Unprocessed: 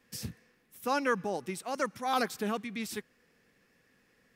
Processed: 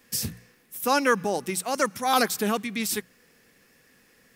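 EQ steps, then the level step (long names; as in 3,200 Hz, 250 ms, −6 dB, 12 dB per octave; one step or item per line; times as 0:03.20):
high-shelf EQ 5,900 Hz +10.5 dB
mains-hum notches 60/120/180 Hz
+7.0 dB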